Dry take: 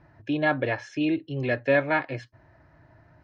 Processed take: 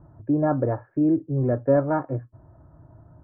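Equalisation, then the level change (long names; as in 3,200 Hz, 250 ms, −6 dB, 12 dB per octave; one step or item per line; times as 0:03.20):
elliptic low-pass filter 1,300 Hz, stop band 70 dB
low-shelf EQ 340 Hz +9.5 dB
0.0 dB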